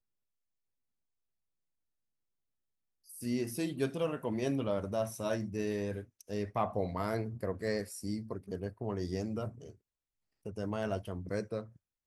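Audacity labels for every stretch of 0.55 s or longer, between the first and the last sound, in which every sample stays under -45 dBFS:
9.710000	10.460000	silence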